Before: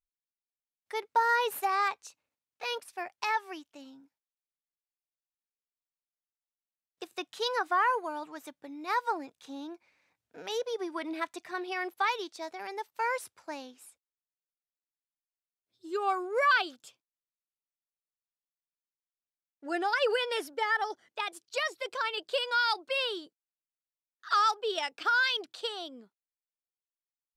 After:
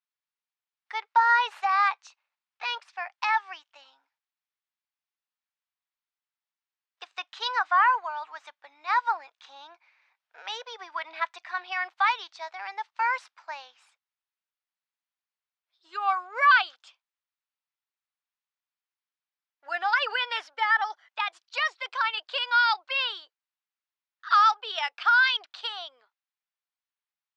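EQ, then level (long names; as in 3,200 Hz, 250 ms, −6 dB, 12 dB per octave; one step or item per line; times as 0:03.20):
high-pass filter 830 Hz 24 dB per octave
low-pass filter 7,900 Hz 12 dB per octave
high-frequency loss of the air 160 metres
+7.5 dB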